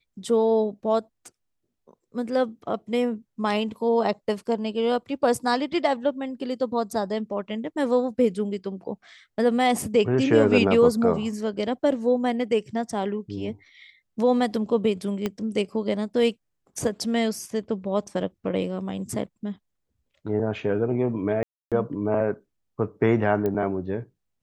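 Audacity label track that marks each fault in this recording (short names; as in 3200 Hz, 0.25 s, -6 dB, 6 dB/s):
15.260000	15.260000	pop -13 dBFS
21.430000	21.720000	gap 0.287 s
23.460000	23.460000	pop -16 dBFS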